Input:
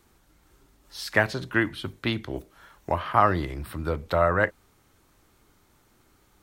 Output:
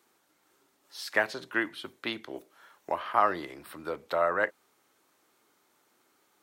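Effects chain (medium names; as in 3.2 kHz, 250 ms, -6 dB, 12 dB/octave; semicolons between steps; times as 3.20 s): high-pass 340 Hz 12 dB/octave; trim -4 dB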